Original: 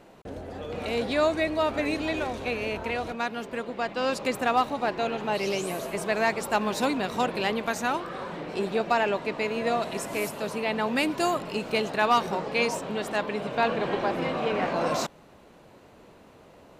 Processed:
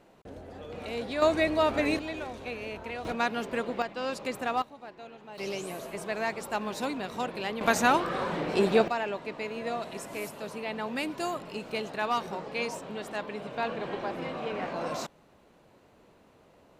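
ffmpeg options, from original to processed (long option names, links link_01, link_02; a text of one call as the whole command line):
ffmpeg -i in.wav -af "asetnsamples=nb_out_samples=441:pad=0,asendcmd='1.22 volume volume 0.5dB;1.99 volume volume -7.5dB;3.05 volume volume 1.5dB;3.82 volume volume -6dB;4.62 volume volume -18dB;5.38 volume volume -6.5dB;7.61 volume volume 4.5dB;8.88 volume volume -7dB',volume=-6.5dB" out.wav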